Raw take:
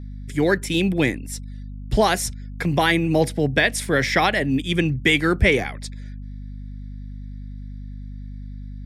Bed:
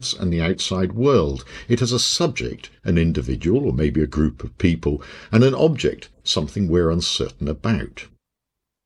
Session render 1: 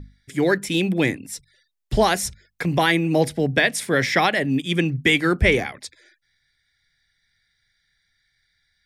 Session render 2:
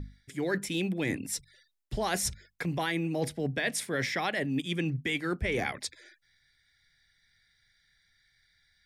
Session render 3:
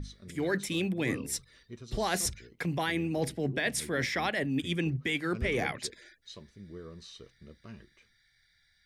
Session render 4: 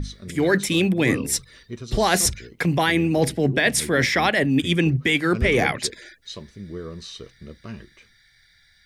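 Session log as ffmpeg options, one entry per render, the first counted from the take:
-af "bandreject=f=50:t=h:w=6,bandreject=f=100:t=h:w=6,bandreject=f=150:t=h:w=6,bandreject=f=200:t=h:w=6,bandreject=f=250:t=h:w=6"
-af "alimiter=limit=0.355:level=0:latency=1:release=146,areverse,acompressor=threshold=0.0398:ratio=6,areverse"
-filter_complex "[1:a]volume=0.0422[s0];[0:a][s0]amix=inputs=2:normalize=0"
-af "volume=3.55"

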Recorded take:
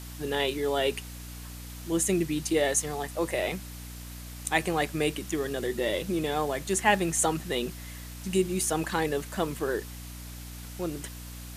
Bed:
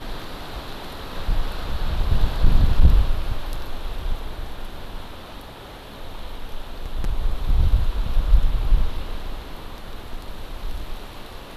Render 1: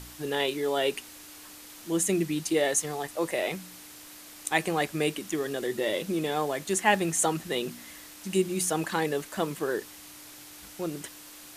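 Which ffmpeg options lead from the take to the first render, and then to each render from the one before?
-af "bandreject=f=60:t=h:w=4,bandreject=f=120:t=h:w=4,bandreject=f=180:t=h:w=4,bandreject=f=240:t=h:w=4"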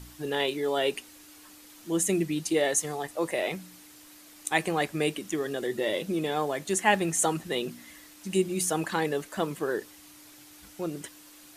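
-af "afftdn=nr=6:nf=-48"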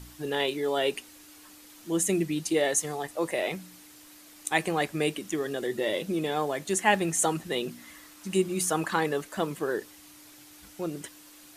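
-filter_complex "[0:a]asettb=1/sr,asplit=3[s0][s1][s2];[s0]atrim=end=7.824[s3];[s1]atrim=start=7.82:end=9.21,asetpts=PTS-STARTPTS,afade=t=in:d=0.004:c=qsin,afade=t=out:st=1.386:d=0.004:c=qsin,equalizer=f=1200:w=2.1:g=5.5[s4];[s2]atrim=start=9.206[s5];[s3][s4]acrossfade=d=0.004:c1=hsin:c2=qsin[s6];[s6][s5]acrossfade=d=0.004:c1=qsin:c2=hsin"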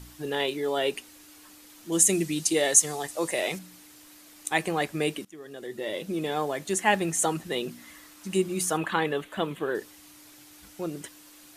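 -filter_complex "[0:a]asettb=1/sr,asplit=3[s0][s1][s2];[s0]atrim=end=1.924[s3];[s1]atrim=start=1.92:end=3.59,asetpts=PTS-STARTPTS,afade=t=in:d=0.004:c=qsin,afade=t=out:st=1.666:d=0.004:c=qsin,equalizer=f=7600:w=0.55:g=9.5[s4];[s2]atrim=start=3.586[s5];[s3][s4]acrossfade=d=0.004:c1=hsin:c2=qsin[s6];[s6][s5]acrossfade=d=0.004:c1=qsin:c2=hsin,asettb=1/sr,asplit=3[s7][s8][s9];[s7]atrim=end=8.774[s10];[s8]atrim=start=8.77:end=9.75,asetpts=PTS-STARTPTS,afade=t=in:d=0.004:c=qsin,afade=t=out:st=0.976:d=0.004:c=qsin,highshelf=f=4100:t=q:w=3:g=-6.5[s11];[s9]atrim=start=9.746[s12];[s10][s11]acrossfade=d=0.004:c1=hsin:c2=qsin[s13];[s13][s12]acrossfade=d=0.004:c1=qsin:c2=hsin,asplit=2[s14][s15];[s14]atrim=end=5.25,asetpts=PTS-STARTPTS,afade=t=out:st=5.246:d=0.004:c=hsin:silence=0.0841395[s16];[s15]atrim=start=5.25,asetpts=PTS-STARTPTS,afade=t=in:d=1.06:silence=0.0841395[s17];[s16][s17]concat=n=2:v=0:a=1"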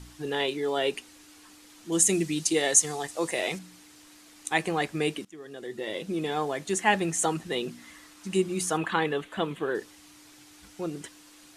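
-af "lowpass=9400,bandreject=f=590:w=12"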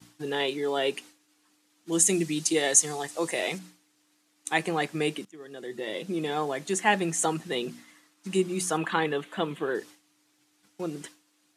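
-af "agate=range=0.0224:threshold=0.00794:ratio=3:detection=peak,highpass=f=120:w=0.5412,highpass=f=120:w=1.3066"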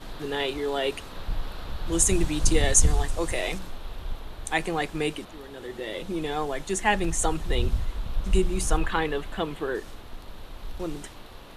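-filter_complex "[1:a]volume=0.422[s0];[0:a][s0]amix=inputs=2:normalize=0"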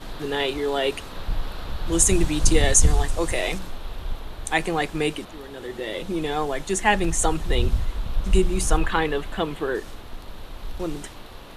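-af "volume=1.5,alimiter=limit=0.708:level=0:latency=1"

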